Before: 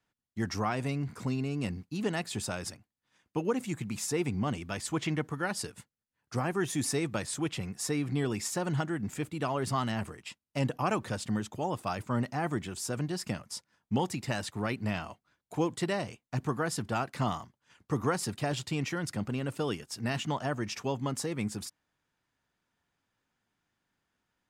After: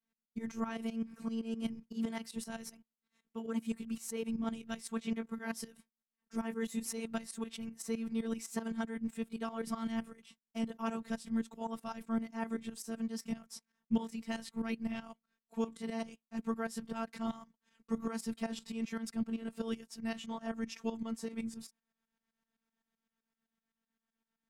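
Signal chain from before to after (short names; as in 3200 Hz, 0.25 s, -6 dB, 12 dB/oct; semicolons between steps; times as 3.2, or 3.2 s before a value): gliding pitch shift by +2 st ending unshifted; tremolo saw up 7.8 Hz, depth 85%; robotiser 226 Hz; bell 180 Hz +7.5 dB 1.5 oct; gain -2.5 dB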